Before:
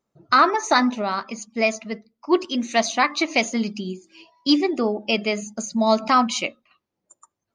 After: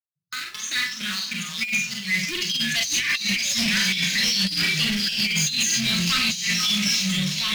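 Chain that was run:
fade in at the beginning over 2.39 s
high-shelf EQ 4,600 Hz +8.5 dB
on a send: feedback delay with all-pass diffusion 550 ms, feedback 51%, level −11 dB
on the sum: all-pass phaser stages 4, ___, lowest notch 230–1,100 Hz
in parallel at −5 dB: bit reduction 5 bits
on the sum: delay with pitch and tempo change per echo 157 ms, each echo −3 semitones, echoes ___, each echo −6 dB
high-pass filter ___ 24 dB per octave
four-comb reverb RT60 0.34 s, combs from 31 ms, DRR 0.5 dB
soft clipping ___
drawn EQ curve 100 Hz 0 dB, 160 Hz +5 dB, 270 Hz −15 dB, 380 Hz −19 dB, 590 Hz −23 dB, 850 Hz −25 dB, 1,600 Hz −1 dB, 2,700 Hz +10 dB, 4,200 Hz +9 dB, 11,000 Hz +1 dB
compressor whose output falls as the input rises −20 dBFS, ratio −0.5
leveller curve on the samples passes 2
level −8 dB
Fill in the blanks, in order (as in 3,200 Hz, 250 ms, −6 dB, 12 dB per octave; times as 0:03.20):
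3.1 Hz, 2, 88 Hz, −16 dBFS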